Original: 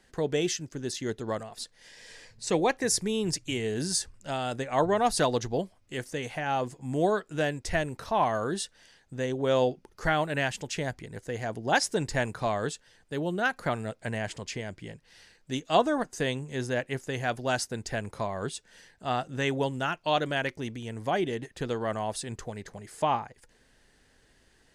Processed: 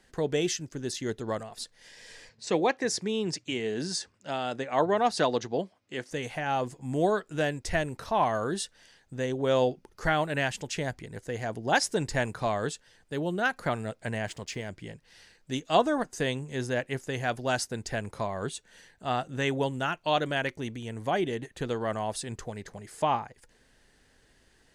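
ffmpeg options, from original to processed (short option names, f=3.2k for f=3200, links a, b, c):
-filter_complex "[0:a]asettb=1/sr,asplit=3[a][b][c];[a]atrim=end=2.294[d];[b]atrim=start=2.29:end=6.11,asetpts=PTS-STARTPTS,afade=t=in:d=0.004:c=qsin,afade=t=out:st=3.816:d=0.004:c=qsin,highpass=170,lowpass=5.7k[e];[c]atrim=start=6.106[f];[d][e]acrossfade=d=0.004:c1=hsin:c2=qsin[g];[g][f]acrossfade=d=0.004:c1=qsin:c2=hsin,asettb=1/sr,asplit=3[h][i][j];[h]atrim=end=14.274[k];[i]atrim=start=14.27:end=14.69,asetpts=PTS-STARTPTS,afade=t=in:d=0.004:c=qsin,afade=t=out:st=0.416:d=0.004:c=qsin,aeval=exprs='sgn(val(0))*max(abs(val(0))-0.00126,0)':c=same[l];[j]atrim=start=14.686[m];[k][l]acrossfade=d=0.004:c1=hsin:c2=qsin[n];[n][m]acrossfade=d=0.004:c1=qsin:c2=hsin,asettb=1/sr,asplit=3[o][p][q];[o]atrim=end=18.444[r];[p]atrim=start=18.44:end=21.76,asetpts=PTS-STARTPTS,afade=t=in:d=0.004:c=qsin,afade=t=out:st=3.316:d=0.004:c=qsin,bandreject=f=5.1k:w=8.5[s];[q]atrim=start=21.756[t];[r][s]acrossfade=d=0.004:c1=hsin:c2=qsin[u];[u][t]acrossfade=d=0.004:c1=qsin:c2=hsin"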